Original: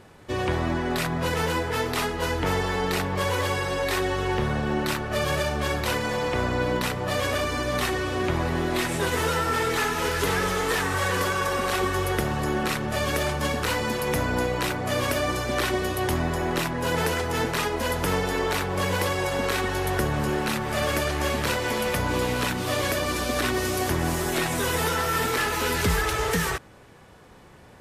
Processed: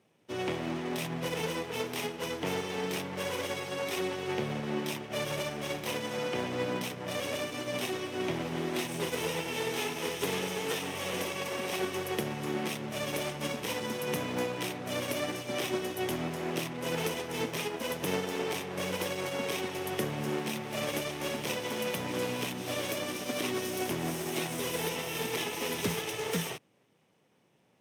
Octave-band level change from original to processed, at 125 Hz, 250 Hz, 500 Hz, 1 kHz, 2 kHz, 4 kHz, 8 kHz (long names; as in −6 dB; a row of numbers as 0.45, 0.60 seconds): −11.5, −7.0, −7.0, −11.0, −10.0, −6.0, −6.5 decibels